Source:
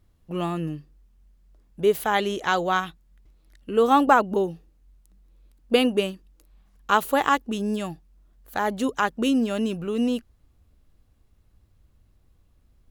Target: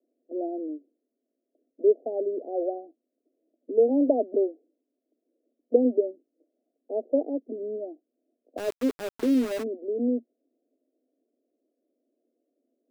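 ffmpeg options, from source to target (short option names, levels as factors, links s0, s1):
-filter_complex "[0:a]asuperpass=centerf=410:order=20:qfactor=0.9,asplit=3[s0][s1][s2];[s0]afade=t=out:st=8.57:d=0.02[s3];[s1]aeval=exprs='val(0)*gte(abs(val(0)),0.0251)':c=same,afade=t=in:st=8.57:d=0.02,afade=t=out:st=9.62:d=0.02[s4];[s2]afade=t=in:st=9.62:d=0.02[s5];[s3][s4][s5]amix=inputs=3:normalize=0"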